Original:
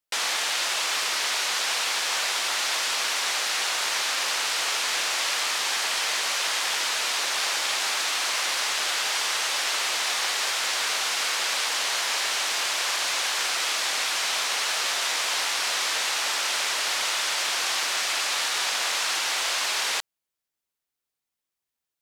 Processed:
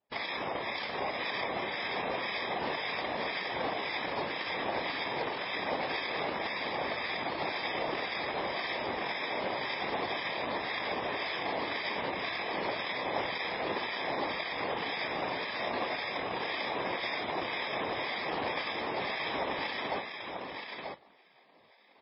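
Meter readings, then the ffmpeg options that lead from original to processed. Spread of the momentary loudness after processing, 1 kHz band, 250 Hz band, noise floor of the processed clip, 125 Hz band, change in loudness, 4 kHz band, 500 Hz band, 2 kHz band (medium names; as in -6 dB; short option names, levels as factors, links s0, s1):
1 LU, -3.5 dB, +10.0 dB, -60 dBFS, no reading, -10.0 dB, -14.5 dB, +3.5 dB, -8.0 dB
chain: -filter_complex "[0:a]aemphasis=mode=production:type=75kf,areverse,acompressor=mode=upward:threshold=0.0447:ratio=2.5,areverse,acrusher=samples=31:mix=1:aa=0.000001,acrossover=split=1300[s0][s1];[s0]aeval=exprs='val(0)*(1-0.7/2+0.7/2*cos(2*PI*1.9*n/s))':c=same[s2];[s1]aeval=exprs='val(0)*(1-0.7/2-0.7/2*cos(2*PI*1.9*n/s))':c=same[s3];[s2][s3]amix=inputs=2:normalize=0,acrusher=bits=3:mode=log:mix=0:aa=0.000001,afftfilt=real='hypot(re,im)*cos(2*PI*random(0))':imag='hypot(re,im)*sin(2*PI*random(1))':win_size=512:overlap=0.75,bandpass=f=2100:t=q:w=0.59:csg=0,aecho=1:1:937:0.531" -ar 12000 -c:a libmp3lame -b:a 16k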